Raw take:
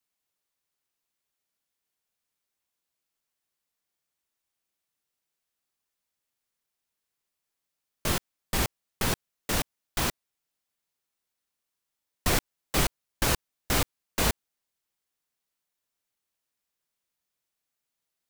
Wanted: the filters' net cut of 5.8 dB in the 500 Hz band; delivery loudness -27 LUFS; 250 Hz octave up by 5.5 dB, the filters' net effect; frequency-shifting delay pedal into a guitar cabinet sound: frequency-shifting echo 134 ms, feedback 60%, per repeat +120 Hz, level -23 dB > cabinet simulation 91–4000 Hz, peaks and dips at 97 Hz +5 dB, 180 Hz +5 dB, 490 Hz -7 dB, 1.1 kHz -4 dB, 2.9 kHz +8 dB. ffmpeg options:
-filter_complex "[0:a]equalizer=f=250:t=o:g=7.5,equalizer=f=500:t=o:g=-7.5,asplit=5[s0][s1][s2][s3][s4];[s1]adelay=134,afreqshift=120,volume=0.0708[s5];[s2]adelay=268,afreqshift=240,volume=0.0427[s6];[s3]adelay=402,afreqshift=360,volume=0.0254[s7];[s4]adelay=536,afreqshift=480,volume=0.0153[s8];[s0][s5][s6][s7][s8]amix=inputs=5:normalize=0,highpass=91,equalizer=f=97:t=q:w=4:g=5,equalizer=f=180:t=q:w=4:g=5,equalizer=f=490:t=q:w=4:g=-7,equalizer=f=1100:t=q:w=4:g=-4,equalizer=f=2900:t=q:w=4:g=8,lowpass=f=4000:w=0.5412,lowpass=f=4000:w=1.3066,volume=1.41"

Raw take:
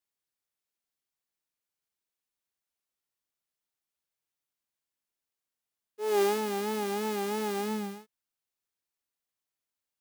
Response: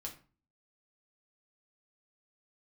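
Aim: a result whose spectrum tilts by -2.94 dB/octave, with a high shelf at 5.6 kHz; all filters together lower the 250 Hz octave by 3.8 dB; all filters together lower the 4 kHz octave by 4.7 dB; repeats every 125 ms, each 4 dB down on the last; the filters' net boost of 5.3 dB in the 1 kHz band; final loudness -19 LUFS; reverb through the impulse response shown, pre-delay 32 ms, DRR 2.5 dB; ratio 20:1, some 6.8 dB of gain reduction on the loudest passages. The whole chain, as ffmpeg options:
-filter_complex "[0:a]equalizer=f=250:t=o:g=-5.5,equalizer=f=1000:t=o:g=7.5,equalizer=f=4000:t=o:g=-5,highshelf=f=5600:g=-4.5,acompressor=threshold=0.0447:ratio=20,aecho=1:1:125|250|375|500|625|750|875|1000|1125:0.631|0.398|0.25|0.158|0.0994|0.0626|0.0394|0.0249|0.0157,asplit=2[s0][s1];[1:a]atrim=start_sample=2205,adelay=32[s2];[s1][s2]afir=irnorm=-1:irlink=0,volume=1[s3];[s0][s3]amix=inputs=2:normalize=0,volume=3.16"

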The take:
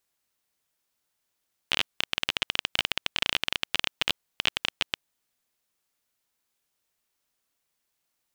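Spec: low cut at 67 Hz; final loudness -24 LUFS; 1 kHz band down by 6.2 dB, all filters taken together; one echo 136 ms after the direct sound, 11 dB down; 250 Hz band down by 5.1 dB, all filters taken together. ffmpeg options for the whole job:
-af "highpass=67,equalizer=f=250:t=o:g=-6.5,equalizer=f=1000:t=o:g=-8,aecho=1:1:136:0.282,volume=1.78"

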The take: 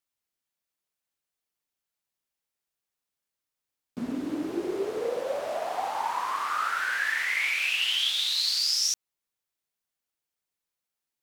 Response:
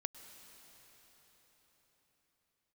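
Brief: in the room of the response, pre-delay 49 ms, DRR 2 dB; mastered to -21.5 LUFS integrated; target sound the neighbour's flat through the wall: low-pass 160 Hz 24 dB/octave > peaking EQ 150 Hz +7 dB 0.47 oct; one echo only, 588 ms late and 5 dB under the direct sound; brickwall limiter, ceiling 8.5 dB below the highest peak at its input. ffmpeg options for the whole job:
-filter_complex "[0:a]alimiter=limit=0.075:level=0:latency=1,aecho=1:1:588:0.562,asplit=2[s0][s1];[1:a]atrim=start_sample=2205,adelay=49[s2];[s1][s2]afir=irnorm=-1:irlink=0,volume=1[s3];[s0][s3]amix=inputs=2:normalize=0,lowpass=f=160:w=0.5412,lowpass=f=160:w=1.3066,equalizer=f=150:t=o:w=0.47:g=7,volume=23.7"

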